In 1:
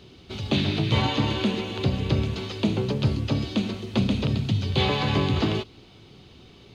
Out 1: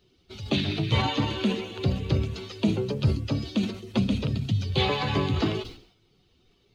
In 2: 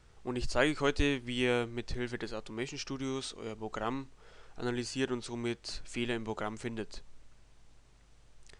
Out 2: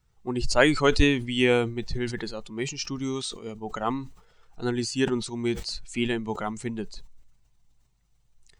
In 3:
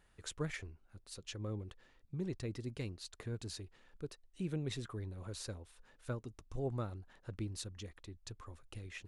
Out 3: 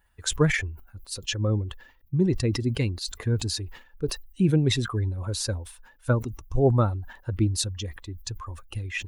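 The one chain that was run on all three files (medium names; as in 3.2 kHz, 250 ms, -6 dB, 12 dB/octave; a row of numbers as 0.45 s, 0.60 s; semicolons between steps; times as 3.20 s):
expander on every frequency bin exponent 1.5; decay stretcher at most 100 dB/s; normalise loudness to -27 LUFS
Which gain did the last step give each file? +1.0 dB, +10.0 dB, +19.0 dB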